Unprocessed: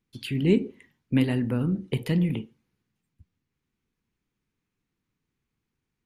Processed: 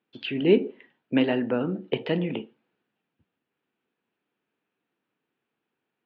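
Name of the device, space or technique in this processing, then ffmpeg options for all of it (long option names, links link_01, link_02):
phone earpiece: -af "highpass=390,equalizer=frequency=650:width_type=q:width=4:gain=4,equalizer=frequency=1100:width_type=q:width=4:gain=-5,equalizer=frequency=2100:width_type=q:width=4:gain=-8,lowpass=frequency=3000:width=0.5412,lowpass=frequency=3000:width=1.3066,volume=8dB"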